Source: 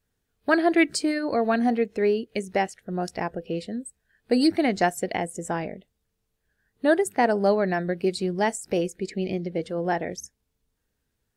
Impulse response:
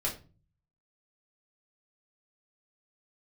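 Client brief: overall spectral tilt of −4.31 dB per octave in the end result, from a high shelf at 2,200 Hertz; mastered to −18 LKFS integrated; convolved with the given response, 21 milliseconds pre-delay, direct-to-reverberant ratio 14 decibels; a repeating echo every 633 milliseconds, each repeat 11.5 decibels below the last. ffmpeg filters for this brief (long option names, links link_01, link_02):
-filter_complex "[0:a]highshelf=frequency=2200:gain=4.5,aecho=1:1:633|1266|1899:0.266|0.0718|0.0194,asplit=2[link_01][link_02];[1:a]atrim=start_sample=2205,adelay=21[link_03];[link_02][link_03]afir=irnorm=-1:irlink=0,volume=-19dB[link_04];[link_01][link_04]amix=inputs=2:normalize=0,volume=6.5dB"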